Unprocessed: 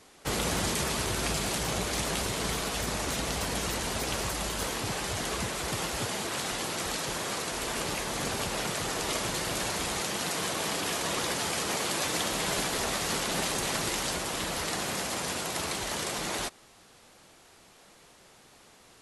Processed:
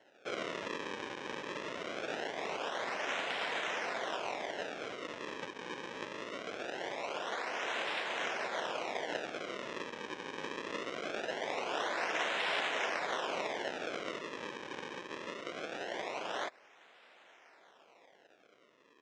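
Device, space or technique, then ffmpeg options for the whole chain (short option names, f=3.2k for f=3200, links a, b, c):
circuit-bent sampling toy: -af "acrusher=samples=36:mix=1:aa=0.000001:lfo=1:lforange=57.6:lforate=0.22,highpass=600,equalizer=f=860:t=q:w=4:g=-3,equalizer=f=1.2k:t=q:w=4:g=-5,equalizer=f=4.5k:t=q:w=4:g=-10,lowpass=f=5.4k:w=0.5412,lowpass=f=5.4k:w=1.3066"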